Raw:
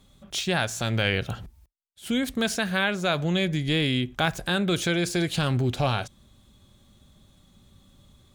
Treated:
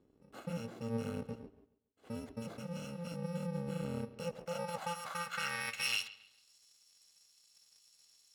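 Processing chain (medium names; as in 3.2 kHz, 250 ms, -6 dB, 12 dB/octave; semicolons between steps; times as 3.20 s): bit-reversed sample order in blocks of 128 samples; band-pass sweep 340 Hz -> 5.4 kHz, 4.02–6.55 s; bucket-brigade echo 138 ms, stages 4096, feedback 30%, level -17 dB; trim +3.5 dB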